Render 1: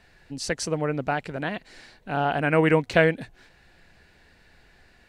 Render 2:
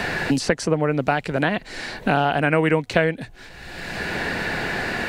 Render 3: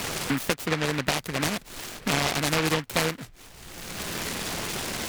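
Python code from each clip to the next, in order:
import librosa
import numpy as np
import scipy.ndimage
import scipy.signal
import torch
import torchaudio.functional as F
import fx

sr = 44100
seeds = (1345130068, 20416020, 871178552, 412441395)

y1 = fx.band_squash(x, sr, depth_pct=100)
y1 = F.gain(torch.from_numpy(y1), 4.5).numpy()
y2 = fx.noise_mod_delay(y1, sr, seeds[0], noise_hz=1600.0, depth_ms=0.27)
y2 = F.gain(torch.from_numpy(y2), -6.0).numpy()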